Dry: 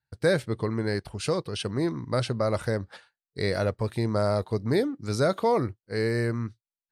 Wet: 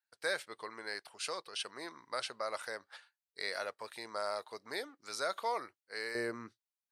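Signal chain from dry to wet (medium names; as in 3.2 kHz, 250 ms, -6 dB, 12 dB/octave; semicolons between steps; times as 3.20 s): high-pass 930 Hz 12 dB/octave, from 6.15 s 420 Hz; trim -4.5 dB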